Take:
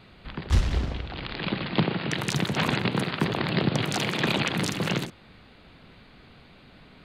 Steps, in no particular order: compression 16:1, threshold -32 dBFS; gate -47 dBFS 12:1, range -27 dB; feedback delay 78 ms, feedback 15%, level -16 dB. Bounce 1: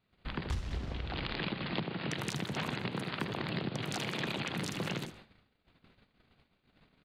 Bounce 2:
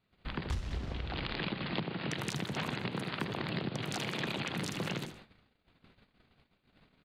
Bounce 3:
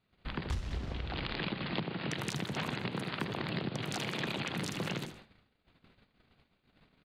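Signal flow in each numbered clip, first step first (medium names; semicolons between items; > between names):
gate > compression > feedback delay; feedback delay > gate > compression; gate > feedback delay > compression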